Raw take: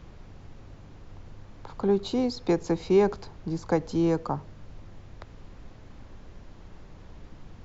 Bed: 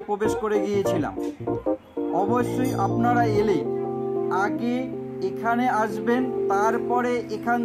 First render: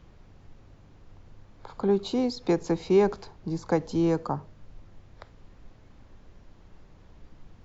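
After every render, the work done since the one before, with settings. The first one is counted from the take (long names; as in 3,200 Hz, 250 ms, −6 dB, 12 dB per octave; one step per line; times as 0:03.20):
noise reduction from a noise print 6 dB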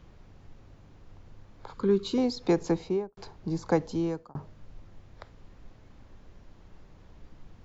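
0:01.74–0:02.18: Butterworth band-reject 710 Hz, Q 1.4
0:02.68–0:03.17: fade out and dull
0:03.78–0:04.35: fade out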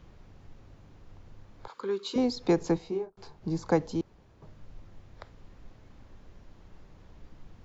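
0:01.68–0:02.16: high-pass filter 520 Hz
0:02.77–0:03.41: micro pitch shift up and down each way 27 cents → 38 cents
0:04.01–0:04.42: fill with room tone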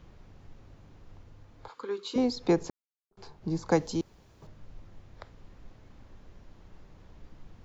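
0:01.24–0:02.15: notch comb filter 190 Hz
0:02.70–0:03.11: silence
0:03.71–0:04.47: high-shelf EQ 3,800 Hz +11.5 dB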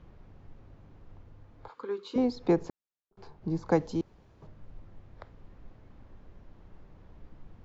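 low-pass filter 1,800 Hz 6 dB per octave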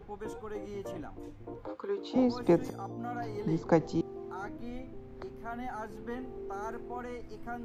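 mix in bed −17.5 dB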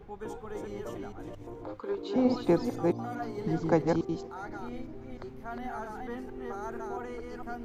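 delay that plays each chunk backwards 225 ms, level −3 dB
feedback echo with a high-pass in the loop 646 ms, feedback 61%, high-pass 1,200 Hz, level −22 dB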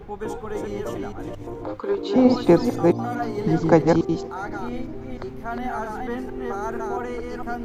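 level +9.5 dB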